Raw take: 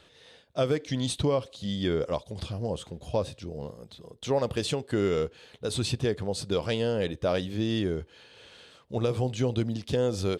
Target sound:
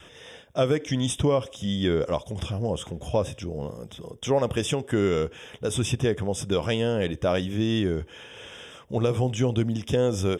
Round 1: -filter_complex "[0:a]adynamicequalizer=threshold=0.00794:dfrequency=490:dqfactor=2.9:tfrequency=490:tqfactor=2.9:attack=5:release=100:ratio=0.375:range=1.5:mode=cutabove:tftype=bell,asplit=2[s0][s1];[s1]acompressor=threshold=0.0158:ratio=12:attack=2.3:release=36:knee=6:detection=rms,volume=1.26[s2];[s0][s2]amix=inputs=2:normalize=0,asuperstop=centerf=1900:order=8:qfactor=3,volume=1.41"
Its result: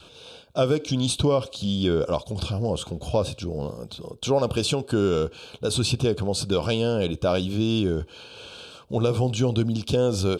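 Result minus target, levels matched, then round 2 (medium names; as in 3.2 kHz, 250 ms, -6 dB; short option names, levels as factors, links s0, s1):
compression: peak gain reduction -8.5 dB; 2 kHz band -3.0 dB
-filter_complex "[0:a]adynamicequalizer=threshold=0.00794:dfrequency=490:dqfactor=2.9:tfrequency=490:tqfactor=2.9:attack=5:release=100:ratio=0.375:range=1.5:mode=cutabove:tftype=bell,asplit=2[s0][s1];[s1]acompressor=threshold=0.00531:ratio=12:attack=2.3:release=36:knee=6:detection=rms,volume=1.26[s2];[s0][s2]amix=inputs=2:normalize=0,asuperstop=centerf=4300:order=8:qfactor=3,volume=1.41"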